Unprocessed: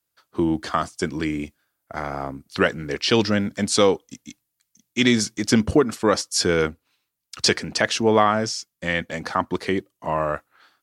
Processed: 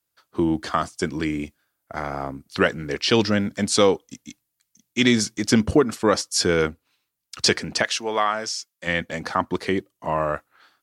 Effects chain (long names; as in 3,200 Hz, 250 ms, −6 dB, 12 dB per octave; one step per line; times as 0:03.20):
0:07.82–0:08.86: high-pass filter 1,400 Hz → 700 Hz 6 dB per octave